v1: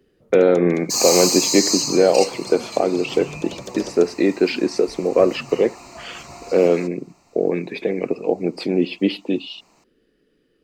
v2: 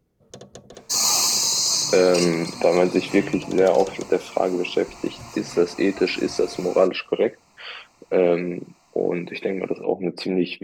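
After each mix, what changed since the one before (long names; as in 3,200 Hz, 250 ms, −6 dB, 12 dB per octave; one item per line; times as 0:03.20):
speech: entry +1.60 s
master: add parametric band 350 Hz −3.5 dB 1.6 octaves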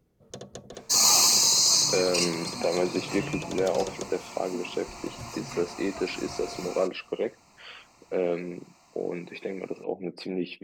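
speech −9.0 dB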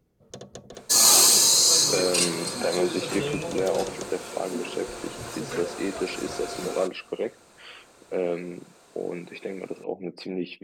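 second sound: remove phaser with its sweep stopped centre 2,300 Hz, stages 8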